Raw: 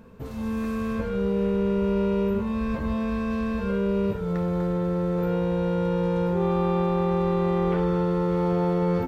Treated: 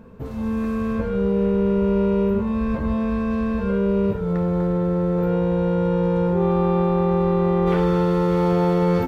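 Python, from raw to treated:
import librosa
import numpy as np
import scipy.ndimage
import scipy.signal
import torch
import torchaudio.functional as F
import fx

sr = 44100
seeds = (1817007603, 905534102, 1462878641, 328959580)

y = fx.high_shelf(x, sr, hz=2100.0, db=fx.steps((0.0, -8.0), (7.66, 4.5)))
y = y * librosa.db_to_amplitude(4.5)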